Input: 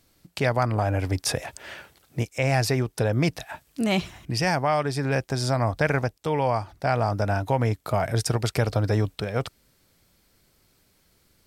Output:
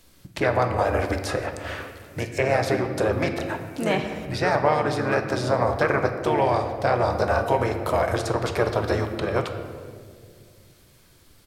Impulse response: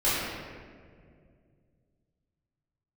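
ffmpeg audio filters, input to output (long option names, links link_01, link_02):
-filter_complex "[0:a]acrossover=split=400|2000[link_01][link_02][link_03];[link_01]acompressor=threshold=-38dB:ratio=4[link_04];[link_02]acompressor=threshold=-25dB:ratio=4[link_05];[link_03]acompressor=threshold=-44dB:ratio=4[link_06];[link_04][link_05][link_06]amix=inputs=3:normalize=0,asplit=3[link_07][link_08][link_09];[link_08]asetrate=33038,aresample=44100,atempo=1.33484,volume=-7dB[link_10];[link_09]asetrate=35002,aresample=44100,atempo=1.25992,volume=-6dB[link_11];[link_07][link_10][link_11]amix=inputs=3:normalize=0,asplit=2[link_12][link_13];[1:a]atrim=start_sample=2205[link_14];[link_13][link_14]afir=irnorm=-1:irlink=0,volume=-19dB[link_15];[link_12][link_15]amix=inputs=2:normalize=0,volume=4dB"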